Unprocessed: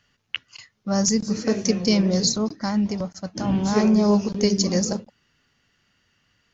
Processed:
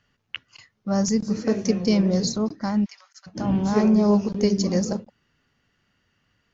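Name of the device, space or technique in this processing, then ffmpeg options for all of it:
behind a face mask: -filter_complex "[0:a]highshelf=f=2.3k:g=-8,asplit=3[a][b][c];[a]afade=t=out:st=2.84:d=0.02[d];[b]highpass=f=1.5k:w=0.5412,highpass=f=1.5k:w=1.3066,afade=t=in:st=2.84:d=0.02,afade=t=out:st=3.26:d=0.02[e];[c]afade=t=in:st=3.26:d=0.02[f];[d][e][f]amix=inputs=3:normalize=0"

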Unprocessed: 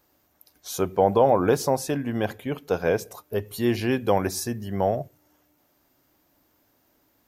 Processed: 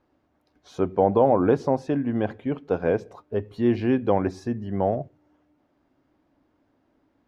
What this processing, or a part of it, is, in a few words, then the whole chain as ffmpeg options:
phone in a pocket: -af "lowpass=3.7k,equalizer=f=270:t=o:w=0.65:g=4.5,highshelf=f=2k:g=-9.5"

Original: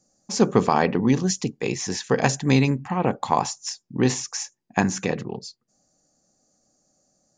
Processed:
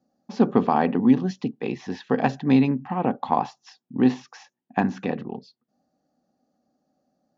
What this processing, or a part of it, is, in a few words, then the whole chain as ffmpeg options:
guitar cabinet: -af "highpass=78,equalizer=f=110:t=q:w=4:g=-7,equalizer=f=250:t=q:w=4:g=9,equalizer=f=760:t=q:w=4:g=5,equalizer=f=2.2k:t=q:w=4:g=-5,lowpass=f=3.6k:w=0.5412,lowpass=f=3.6k:w=1.3066,volume=-3.5dB"

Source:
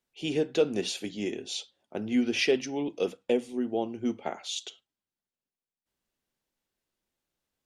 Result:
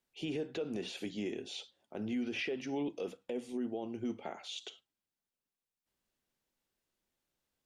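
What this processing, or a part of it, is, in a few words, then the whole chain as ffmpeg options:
stacked limiters: -filter_complex "[0:a]acrossover=split=3000[a][b];[b]acompressor=threshold=-48dB:ratio=4:attack=1:release=60[c];[a][c]amix=inputs=2:normalize=0,alimiter=limit=-19.5dB:level=0:latency=1:release=171,alimiter=level_in=0.5dB:limit=-24dB:level=0:latency=1:release=33,volume=-0.5dB,alimiter=level_in=4dB:limit=-24dB:level=0:latency=1:release=221,volume=-4dB,volume=-1dB"

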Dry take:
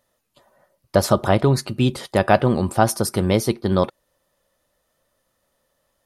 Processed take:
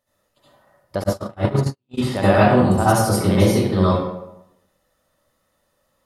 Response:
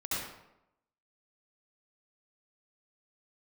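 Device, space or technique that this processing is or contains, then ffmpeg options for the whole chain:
bathroom: -filter_complex "[1:a]atrim=start_sample=2205[a];[0:a][a]afir=irnorm=-1:irlink=0,asplit=3[b][c][d];[b]afade=t=out:st=1.02:d=0.02[e];[c]agate=range=-58dB:threshold=-8dB:ratio=16:detection=peak,afade=t=in:st=1.02:d=0.02,afade=t=out:st=1.97:d=0.02[f];[d]afade=t=in:st=1.97:d=0.02[g];[e][f][g]amix=inputs=3:normalize=0,volume=-2.5dB"

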